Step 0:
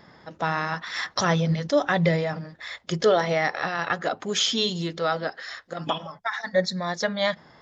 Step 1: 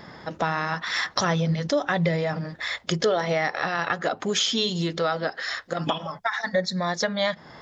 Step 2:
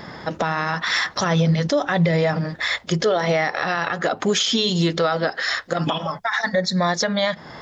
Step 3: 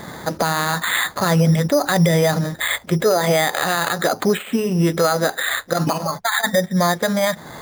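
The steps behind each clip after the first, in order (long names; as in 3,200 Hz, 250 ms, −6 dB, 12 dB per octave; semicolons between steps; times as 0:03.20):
downward compressor 2.5 to 1, threshold −33 dBFS, peak gain reduction 12 dB; level +8 dB
brickwall limiter −18 dBFS, peak gain reduction 10 dB; level +7 dB
bad sample-rate conversion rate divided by 8×, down filtered, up hold; level +3 dB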